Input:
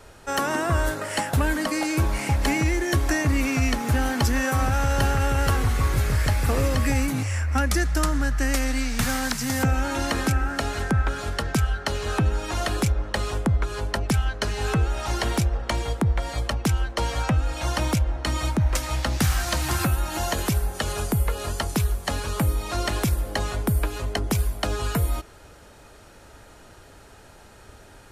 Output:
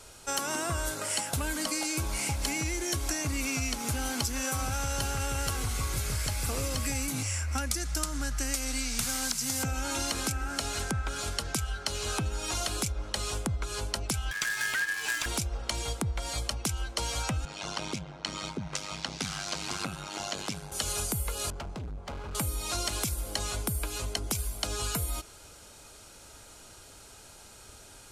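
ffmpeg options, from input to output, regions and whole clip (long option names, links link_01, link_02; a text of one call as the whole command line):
ffmpeg -i in.wav -filter_complex "[0:a]asettb=1/sr,asplit=3[link_01][link_02][link_03];[link_01]atrim=end=14.314[link_04];[link_02]atrim=start=14.31:end=15.26,asetpts=PTS-STARTPTS,afade=type=in:duration=0.004:curve=qsin,afade=type=out:start_time=0.946:duration=0.004:curve=qsin,lowshelf=frequency=180:gain=11,acrusher=bits=4:mode=log:mix=0:aa=0.000001,aeval=exprs='val(0)*sin(2*PI*1700*n/s)':channel_layout=same[link_05];[link_03]atrim=start=15.256[link_06];[link_04][link_05]acrossfade=duration=0.004:curve1=hsin:curve2=qsin[link_07];[link_07][link_06]acrossfade=duration=0.004:curve1=qsin:curve2=hsin,asettb=1/sr,asplit=3[link_08][link_09][link_10];[link_08]atrim=end=17.454[link_11];[link_09]atrim=start=17.45:end=20.72,asetpts=PTS-STARTPTS,afade=type=in:duration=0.004:curve=qsin,afade=type=out:start_time=3.266:duration=0.004:curve=qsin,tremolo=f=99:d=0.889,highpass=150,lowpass=4700[link_12];[link_10]atrim=start=20.716[link_13];[link_11][link_12]acrossfade=duration=0.004:curve1=hsin:curve2=qsin[link_14];[link_14][link_13]acrossfade=duration=0.004:curve1=qsin:curve2=hsin,asettb=1/sr,asplit=3[link_15][link_16][link_17];[link_15]atrim=end=21.504[link_18];[link_16]atrim=start=21.5:end=22.35,asetpts=PTS-STARTPTS,afade=type=in:duration=0.004:curve=qsin,afade=type=out:start_time=0.846:duration=0.004:curve=qsin,lowpass=1200,bandreject=frequency=290:width=6.4,volume=29.5dB,asoftclip=hard,volume=-29.5dB[link_19];[link_17]atrim=start=22.346[link_20];[link_18][link_19]acrossfade=duration=0.004:curve1=hsin:curve2=qsin[link_21];[link_21][link_20]acrossfade=duration=0.004:curve1=qsin:curve2=hsin,equalizer=frequency=8100:width=0.36:gain=13.5,bandreject=frequency=1800:width=7.2,acompressor=threshold=-21dB:ratio=6,volume=-6.5dB" out.wav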